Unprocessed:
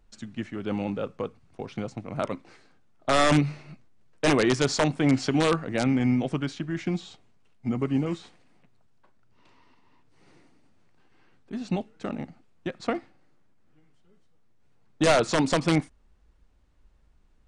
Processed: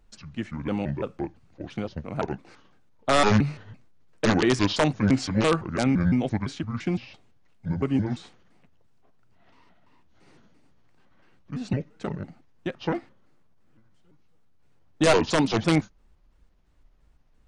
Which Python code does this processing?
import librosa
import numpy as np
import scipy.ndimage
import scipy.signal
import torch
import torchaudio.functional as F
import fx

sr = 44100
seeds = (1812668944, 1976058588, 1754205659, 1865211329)

y = fx.pitch_trill(x, sr, semitones=-6.0, every_ms=170)
y = F.gain(torch.from_numpy(y), 1.5).numpy()